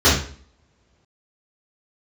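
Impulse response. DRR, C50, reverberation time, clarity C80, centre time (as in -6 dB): -12.5 dB, 4.0 dB, 0.50 s, 9.0 dB, 40 ms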